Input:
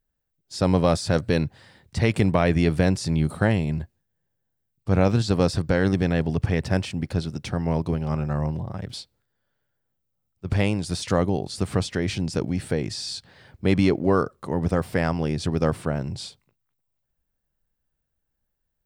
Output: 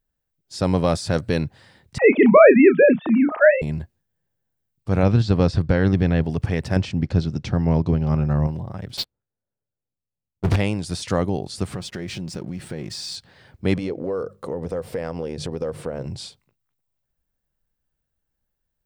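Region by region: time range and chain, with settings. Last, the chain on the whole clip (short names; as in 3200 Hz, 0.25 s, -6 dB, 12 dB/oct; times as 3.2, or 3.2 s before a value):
1.98–3.62 sine-wave speech + bell 810 Hz +10.5 dB 2.8 oct + doubler 31 ms -10 dB
5.03–6.24 LPF 4700 Hz + low shelf 140 Hz +8.5 dB
6.76–8.47 LPF 6900 Hz 24 dB/oct + low shelf 350 Hz +7 dB
8.97–10.56 low-pass opened by the level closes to 650 Hz, open at -31 dBFS + sample leveller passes 5
11.74–13.16 comb 5.5 ms, depth 36% + backlash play -42 dBFS + compressor 4:1, threshold -27 dBFS
13.76–16.06 bell 490 Hz +14 dB 0.47 oct + notches 50/100/150/200 Hz + compressor 4:1, threshold -25 dBFS
whole clip: dry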